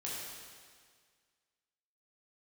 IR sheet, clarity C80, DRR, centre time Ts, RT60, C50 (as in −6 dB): 0.5 dB, −6.5 dB, 115 ms, 1.8 s, −1.5 dB